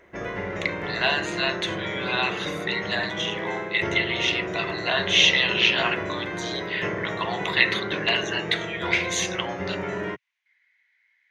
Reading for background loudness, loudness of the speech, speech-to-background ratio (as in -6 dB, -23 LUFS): -30.5 LUFS, -24.5 LUFS, 6.0 dB